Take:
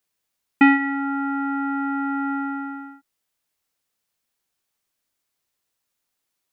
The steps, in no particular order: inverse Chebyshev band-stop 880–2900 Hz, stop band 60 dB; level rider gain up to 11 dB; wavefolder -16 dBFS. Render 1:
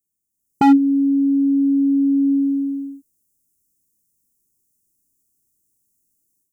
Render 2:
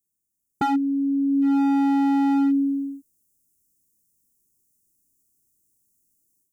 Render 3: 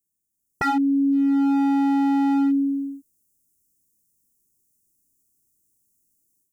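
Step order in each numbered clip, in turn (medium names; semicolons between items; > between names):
inverse Chebyshev band-stop > wavefolder > level rider; level rider > inverse Chebyshev band-stop > wavefolder; inverse Chebyshev band-stop > level rider > wavefolder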